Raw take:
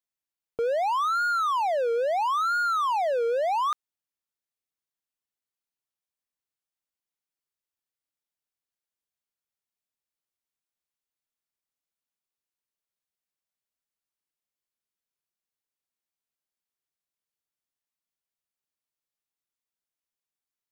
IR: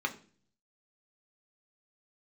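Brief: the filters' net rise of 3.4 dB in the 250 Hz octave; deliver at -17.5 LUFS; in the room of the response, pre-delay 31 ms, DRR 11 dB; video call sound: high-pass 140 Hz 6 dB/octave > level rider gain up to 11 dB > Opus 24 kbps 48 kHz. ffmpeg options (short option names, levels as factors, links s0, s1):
-filter_complex "[0:a]equalizer=f=250:t=o:g=6.5,asplit=2[s0][s1];[1:a]atrim=start_sample=2205,adelay=31[s2];[s1][s2]afir=irnorm=-1:irlink=0,volume=0.141[s3];[s0][s3]amix=inputs=2:normalize=0,highpass=f=140:p=1,dynaudnorm=m=3.55,volume=2.24" -ar 48000 -c:a libopus -b:a 24k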